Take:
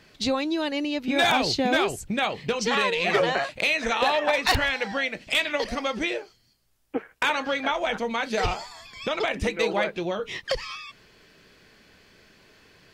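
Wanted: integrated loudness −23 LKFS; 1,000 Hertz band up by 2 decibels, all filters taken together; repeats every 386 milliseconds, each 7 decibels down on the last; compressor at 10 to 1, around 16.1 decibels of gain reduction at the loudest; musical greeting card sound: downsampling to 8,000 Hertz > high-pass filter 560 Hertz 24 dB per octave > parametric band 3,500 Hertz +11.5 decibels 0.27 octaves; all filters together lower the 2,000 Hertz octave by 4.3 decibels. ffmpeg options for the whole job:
ffmpeg -i in.wav -af "equalizer=frequency=1000:width_type=o:gain=4.5,equalizer=frequency=2000:width_type=o:gain=-7.5,acompressor=threshold=-34dB:ratio=10,aecho=1:1:386|772|1158|1544|1930:0.447|0.201|0.0905|0.0407|0.0183,aresample=8000,aresample=44100,highpass=frequency=560:width=0.5412,highpass=frequency=560:width=1.3066,equalizer=frequency=3500:width_type=o:width=0.27:gain=11.5,volume=14dB" out.wav

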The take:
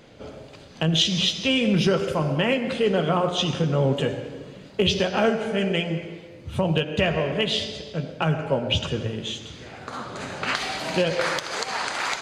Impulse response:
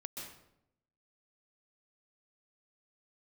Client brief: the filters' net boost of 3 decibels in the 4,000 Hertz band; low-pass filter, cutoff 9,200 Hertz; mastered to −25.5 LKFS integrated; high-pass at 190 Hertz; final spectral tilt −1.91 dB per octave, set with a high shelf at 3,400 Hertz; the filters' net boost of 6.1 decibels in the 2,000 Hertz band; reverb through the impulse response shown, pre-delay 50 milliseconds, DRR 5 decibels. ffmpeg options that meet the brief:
-filter_complex "[0:a]highpass=190,lowpass=9200,equalizer=frequency=2000:width_type=o:gain=9,highshelf=frequency=3400:gain=-7,equalizer=frequency=4000:width_type=o:gain=4.5,asplit=2[link_01][link_02];[1:a]atrim=start_sample=2205,adelay=50[link_03];[link_02][link_03]afir=irnorm=-1:irlink=0,volume=-3dB[link_04];[link_01][link_04]amix=inputs=2:normalize=0,volume=-4.5dB"

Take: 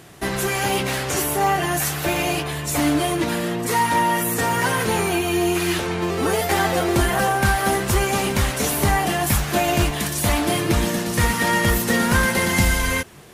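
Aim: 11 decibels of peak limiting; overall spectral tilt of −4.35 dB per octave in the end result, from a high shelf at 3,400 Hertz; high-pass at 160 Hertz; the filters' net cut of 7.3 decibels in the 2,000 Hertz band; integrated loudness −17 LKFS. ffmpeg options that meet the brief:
ffmpeg -i in.wav -af "highpass=160,equalizer=frequency=2000:width_type=o:gain=-8,highshelf=frequency=3400:gain=-4.5,volume=10.5dB,alimiter=limit=-8.5dB:level=0:latency=1" out.wav

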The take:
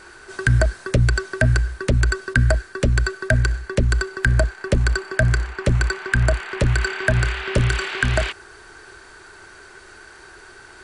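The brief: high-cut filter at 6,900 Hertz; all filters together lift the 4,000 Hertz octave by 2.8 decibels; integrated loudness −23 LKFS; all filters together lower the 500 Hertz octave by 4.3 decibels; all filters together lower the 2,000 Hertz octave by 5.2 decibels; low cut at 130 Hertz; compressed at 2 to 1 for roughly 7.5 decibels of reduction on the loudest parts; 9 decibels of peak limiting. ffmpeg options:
ffmpeg -i in.wav -af "highpass=130,lowpass=6900,equalizer=frequency=500:width_type=o:gain=-5.5,equalizer=frequency=2000:width_type=o:gain=-8.5,equalizer=frequency=4000:width_type=o:gain=6.5,acompressor=threshold=-32dB:ratio=2,volume=11dB,alimiter=limit=-10dB:level=0:latency=1" out.wav

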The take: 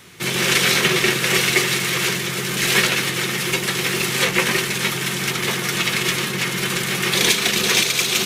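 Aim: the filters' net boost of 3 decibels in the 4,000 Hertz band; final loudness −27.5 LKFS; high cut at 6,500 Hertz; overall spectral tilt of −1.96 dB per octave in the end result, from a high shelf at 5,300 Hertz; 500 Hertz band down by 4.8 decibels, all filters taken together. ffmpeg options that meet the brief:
ffmpeg -i in.wav -af "lowpass=6500,equalizer=frequency=500:width_type=o:gain=-7,equalizer=frequency=4000:width_type=o:gain=6.5,highshelf=frequency=5300:gain=-5.5,volume=-10dB" out.wav

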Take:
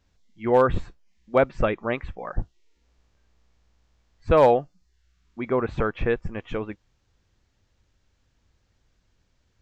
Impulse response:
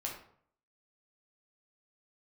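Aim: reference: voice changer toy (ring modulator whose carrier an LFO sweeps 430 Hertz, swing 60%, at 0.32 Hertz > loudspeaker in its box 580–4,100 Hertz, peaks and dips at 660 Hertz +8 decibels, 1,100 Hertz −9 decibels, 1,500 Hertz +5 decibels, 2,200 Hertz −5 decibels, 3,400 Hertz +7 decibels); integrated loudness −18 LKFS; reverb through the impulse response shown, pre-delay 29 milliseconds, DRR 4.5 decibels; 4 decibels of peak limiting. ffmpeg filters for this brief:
-filter_complex "[0:a]alimiter=limit=-12.5dB:level=0:latency=1,asplit=2[link_01][link_02];[1:a]atrim=start_sample=2205,adelay=29[link_03];[link_02][link_03]afir=irnorm=-1:irlink=0,volume=-5.5dB[link_04];[link_01][link_04]amix=inputs=2:normalize=0,aeval=exprs='val(0)*sin(2*PI*430*n/s+430*0.6/0.32*sin(2*PI*0.32*n/s))':channel_layout=same,highpass=580,equalizer=frequency=660:width_type=q:width=4:gain=8,equalizer=frequency=1100:width_type=q:width=4:gain=-9,equalizer=frequency=1500:width_type=q:width=4:gain=5,equalizer=frequency=2200:width_type=q:width=4:gain=-5,equalizer=frequency=3400:width_type=q:width=4:gain=7,lowpass=frequency=4100:width=0.5412,lowpass=frequency=4100:width=1.3066,volume=11dB"

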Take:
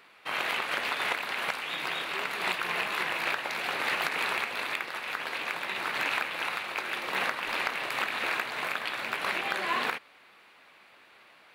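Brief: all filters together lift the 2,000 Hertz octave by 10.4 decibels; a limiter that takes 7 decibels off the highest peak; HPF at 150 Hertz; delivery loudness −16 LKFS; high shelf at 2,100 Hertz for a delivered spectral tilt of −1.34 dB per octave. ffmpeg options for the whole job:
ffmpeg -i in.wav -af "highpass=150,equalizer=frequency=2000:width_type=o:gain=9,highshelf=frequency=2100:gain=6.5,volume=6.5dB,alimiter=limit=-6dB:level=0:latency=1" out.wav

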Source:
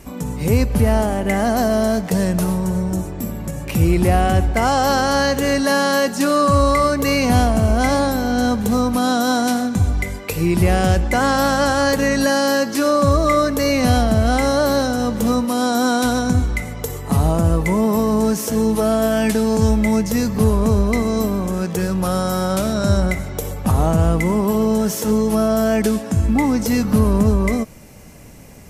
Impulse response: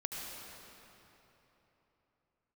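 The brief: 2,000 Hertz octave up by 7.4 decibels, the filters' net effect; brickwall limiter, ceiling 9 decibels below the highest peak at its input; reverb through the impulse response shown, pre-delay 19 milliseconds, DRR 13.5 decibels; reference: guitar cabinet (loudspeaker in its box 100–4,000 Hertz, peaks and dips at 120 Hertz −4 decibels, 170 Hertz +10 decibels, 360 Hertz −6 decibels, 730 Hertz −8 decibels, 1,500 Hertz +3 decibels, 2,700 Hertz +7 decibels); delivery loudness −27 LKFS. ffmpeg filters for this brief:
-filter_complex "[0:a]equalizer=frequency=2000:width_type=o:gain=6.5,alimiter=limit=-11.5dB:level=0:latency=1,asplit=2[link_01][link_02];[1:a]atrim=start_sample=2205,adelay=19[link_03];[link_02][link_03]afir=irnorm=-1:irlink=0,volume=-15dB[link_04];[link_01][link_04]amix=inputs=2:normalize=0,highpass=100,equalizer=frequency=120:width_type=q:width=4:gain=-4,equalizer=frequency=170:width_type=q:width=4:gain=10,equalizer=frequency=360:width_type=q:width=4:gain=-6,equalizer=frequency=730:width_type=q:width=4:gain=-8,equalizer=frequency=1500:width_type=q:width=4:gain=3,equalizer=frequency=2700:width_type=q:width=4:gain=7,lowpass=frequency=4000:width=0.5412,lowpass=frequency=4000:width=1.3066,volume=-7dB"

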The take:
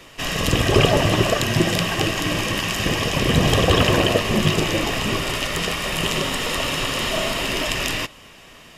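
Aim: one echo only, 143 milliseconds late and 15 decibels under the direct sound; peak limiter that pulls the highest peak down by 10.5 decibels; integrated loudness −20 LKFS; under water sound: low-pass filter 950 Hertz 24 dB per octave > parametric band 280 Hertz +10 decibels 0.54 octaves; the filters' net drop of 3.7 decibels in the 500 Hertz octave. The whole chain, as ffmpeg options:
ffmpeg -i in.wav -af "equalizer=frequency=500:width_type=o:gain=-7.5,alimiter=limit=-13dB:level=0:latency=1,lowpass=frequency=950:width=0.5412,lowpass=frequency=950:width=1.3066,equalizer=frequency=280:width_type=o:width=0.54:gain=10,aecho=1:1:143:0.178,volume=5dB" out.wav

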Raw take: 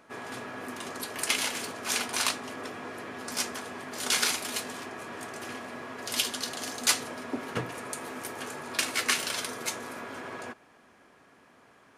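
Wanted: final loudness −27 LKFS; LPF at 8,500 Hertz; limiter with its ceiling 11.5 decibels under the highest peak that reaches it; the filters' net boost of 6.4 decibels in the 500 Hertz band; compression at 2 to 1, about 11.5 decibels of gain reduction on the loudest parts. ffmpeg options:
ffmpeg -i in.wav -af "lowpass=8500,equalizer=frequency=500:width_type=o:gain=8,acompressor=threshold=-44dB:ratio=2,volume=15dB,alimiter=limit=-16dB:level=0:latency=1" out.wav

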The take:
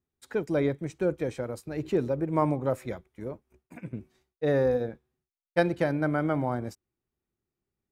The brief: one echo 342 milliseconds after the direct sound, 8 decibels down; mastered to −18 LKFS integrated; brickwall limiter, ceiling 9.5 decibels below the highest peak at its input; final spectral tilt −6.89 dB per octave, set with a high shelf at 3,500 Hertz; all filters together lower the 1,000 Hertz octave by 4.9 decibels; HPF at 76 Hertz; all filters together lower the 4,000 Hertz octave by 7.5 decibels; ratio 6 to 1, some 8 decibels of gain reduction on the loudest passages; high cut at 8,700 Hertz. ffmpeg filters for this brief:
ffmpeg -i in.wav -af "highpass=76,lowpass=8700,equalizer=frequency=1000:width_type=o:gain=-6,highshelf=frequency=3500:gain=-5,equalizer=frequency=4000:width_type=o:gain=-5.5,acompressor=threshold=-29dB:ratio=6,alimiter=level_in=3dB:limit=-24dB:level=0:latency=1,volume=-3dB,aecho=1:1:342:0.398,volume=20dB" out.wav

